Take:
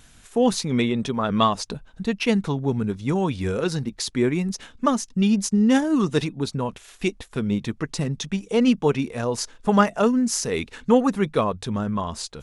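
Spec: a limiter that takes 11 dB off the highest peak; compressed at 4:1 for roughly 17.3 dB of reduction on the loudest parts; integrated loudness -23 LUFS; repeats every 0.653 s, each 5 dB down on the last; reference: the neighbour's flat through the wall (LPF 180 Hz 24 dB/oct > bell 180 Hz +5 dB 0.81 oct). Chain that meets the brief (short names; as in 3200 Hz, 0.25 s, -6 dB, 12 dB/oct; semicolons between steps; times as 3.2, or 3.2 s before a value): compressor 4:1, threshold -34 dBFS; limiter -30 dBFS; LPF 180 Hz 24 dB/oct; bell 180 Hz +5 dB 0.81 oct; feedback echo 0.653 s, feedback 56%, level -5 dB; gain +18.5 dB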